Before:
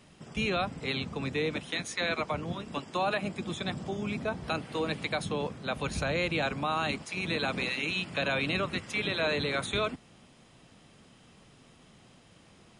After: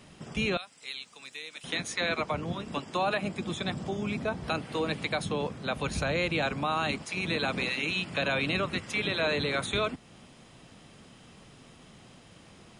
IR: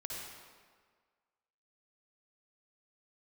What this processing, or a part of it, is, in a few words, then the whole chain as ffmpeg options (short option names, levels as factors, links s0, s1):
parallel compression: -filter_complex "[0:a]asettb=1/sr,asplit=3[s0][s1][s2];[s0]atrim=end=0.574[s3];[s1]atrim=start=0.57:end=1.64,asetpts=PTS-STARTPTS,afade=t=in:d=0.004:c=qsin,afade=t=out:st=1.066:d=0.004:c=qsin,aderivative[s4];[s2]atrim=start=1.636[s5];[s3][s4]acrossfade=d=0.004:c1=hsin:c2=qsin[s6];[s6][s5]acrossfade=d=0.004:c1=qsin:c2=hsin,asplit=2[s7][s8];[s8]acompressor=threshold=0.00794:ratio=6,volume=0.631[s9];[s7][s9]amix=inputs=2:normalize=0"